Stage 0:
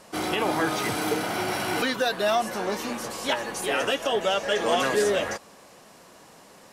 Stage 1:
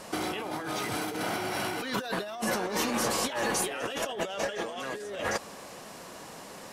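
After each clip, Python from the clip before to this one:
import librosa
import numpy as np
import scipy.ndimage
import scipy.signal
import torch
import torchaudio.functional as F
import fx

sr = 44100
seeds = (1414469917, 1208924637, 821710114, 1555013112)

y = fx.over_compress(x, sr, threshold_db=-33.0, ratio=-1.0)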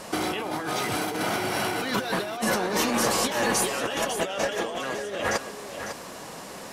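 y = x + 10.0 ** (-9.5 / 20.0) * np.pad(x, (int(551 * sr / 1000.0), 0))[:len(x)]
y = y * 10.0 ** (4.5 / 20.0)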